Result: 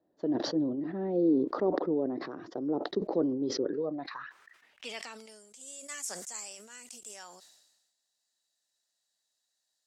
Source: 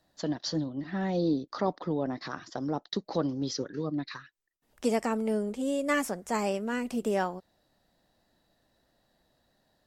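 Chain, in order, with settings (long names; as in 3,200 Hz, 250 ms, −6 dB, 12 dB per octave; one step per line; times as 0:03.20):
band-pass filter sweep 380 Hz → 7,200 Hz, 0:03.63–0:05.43
level that may fall only so fast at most 48 dB per second
level +5 dB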